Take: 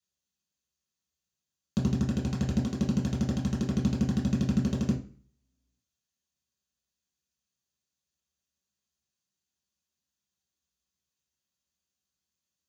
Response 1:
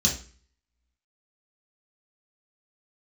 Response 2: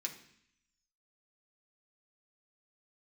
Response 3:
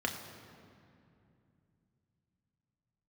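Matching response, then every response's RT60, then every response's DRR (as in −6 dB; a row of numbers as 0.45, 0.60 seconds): 1; 0.40, 0.65, 2.6 seconds; −3.5, 0.0, 2.0 decibels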